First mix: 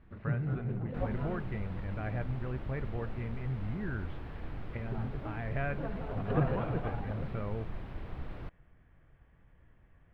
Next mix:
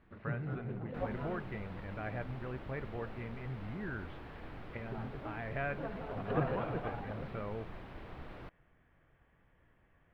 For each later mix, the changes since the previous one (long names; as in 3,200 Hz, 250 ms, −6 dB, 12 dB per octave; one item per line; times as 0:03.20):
master: add low-shelf EQ 170 Hz −10.5 dB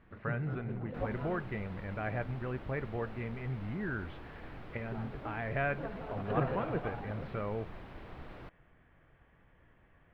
speech +4.5 dB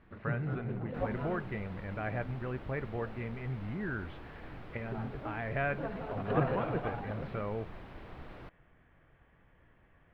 first sound +3.0 dB